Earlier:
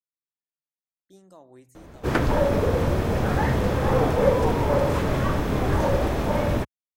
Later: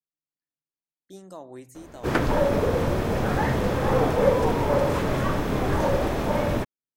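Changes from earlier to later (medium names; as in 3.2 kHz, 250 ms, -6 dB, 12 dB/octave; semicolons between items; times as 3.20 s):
speech +8.5 dB; master: add peaking EQ 66 Hz -5 dB 1.6 oct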